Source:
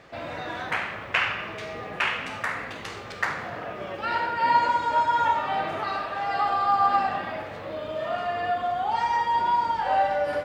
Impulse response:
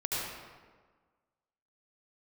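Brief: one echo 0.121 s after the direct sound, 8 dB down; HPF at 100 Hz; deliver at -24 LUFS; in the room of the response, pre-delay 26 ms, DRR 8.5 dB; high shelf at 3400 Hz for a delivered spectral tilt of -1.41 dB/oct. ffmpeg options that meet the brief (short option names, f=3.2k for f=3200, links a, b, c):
-filter_complex "[0:a]highpass=100,highshelf=f=3.4k:g=-5.5,aecho=1:1:121:0.398,asplit=2[a][b];[1:a]atrim=start_sample=2205,adelay=26[c];[b][c]afir=irnorm=-1:irlink=0,volume=-15dB[d];[a][d]amix=inputs=2:normalize=0,volume=1.5dB"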